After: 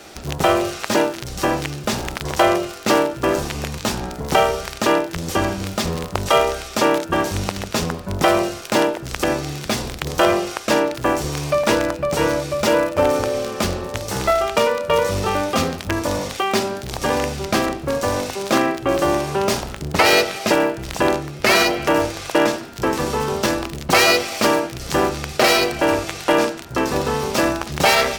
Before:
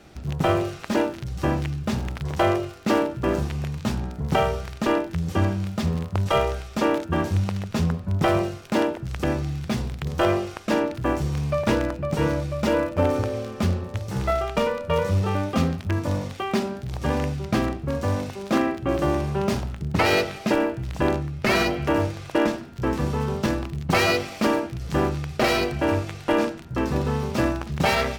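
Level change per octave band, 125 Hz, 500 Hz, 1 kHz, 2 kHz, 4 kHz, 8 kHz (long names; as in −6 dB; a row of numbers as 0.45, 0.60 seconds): −3.0, +6.0, +7.0, +7.5, +9.5, +13.0 decibels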